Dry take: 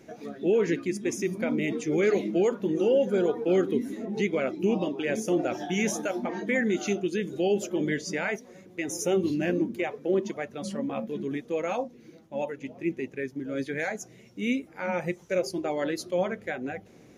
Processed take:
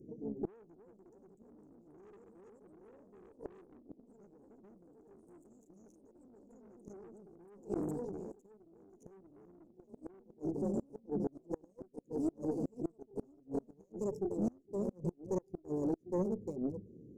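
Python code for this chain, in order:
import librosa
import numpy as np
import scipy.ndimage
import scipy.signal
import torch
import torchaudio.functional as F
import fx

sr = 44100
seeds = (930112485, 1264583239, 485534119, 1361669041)

y = fx.wiener(x, sr, points=41)
y = fx.echo_pitch(y, sr, ms=370, semitones=2, count=3, db_per_echo=-3.0)
y = scipy.signal.sosfilt(scipy.signal.ellip(3, 1.0, 40, [440.0, 6600.0], 'bandstop', fs=sr, output='sos'), y)
y = fx.peak_eq(y, sr, hz=1400.0, db=-11.0, octaves=0.76)
y = fx.tube_stage(y, sr, drive_db=27.0, bias=0.55)
y = fx.gate_flip(y, sr, shuts_db=-28.0, range_db=-31)
y = fx.sustainer(y, sr, db_per_s=20.0, at=(6.17, 8.32))
y = y * 10.0 ** (3.5 / 20.0)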